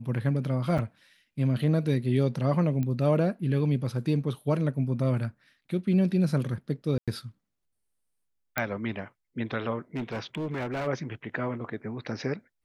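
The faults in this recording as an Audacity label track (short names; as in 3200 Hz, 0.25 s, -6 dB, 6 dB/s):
0.780000	0.790000	gap 5.8 ms
2.830000	2.830000	pop -20 dBFS
6.980000	7.080000	gap 96 ms
8.580000	8.580000	pop -11 dBFS
9.960000	10.880000	clipped -28 dBFS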